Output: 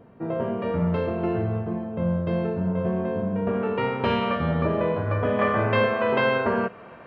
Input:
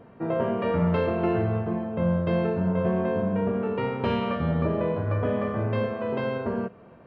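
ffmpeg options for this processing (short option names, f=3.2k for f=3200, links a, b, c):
-af "asetnsamples=n=441:p=0,asendcmd='3.47 equalizer g 5.5;5.39 equalizer g 13',equalizer=f=2k:w=0.31:g=-3.5"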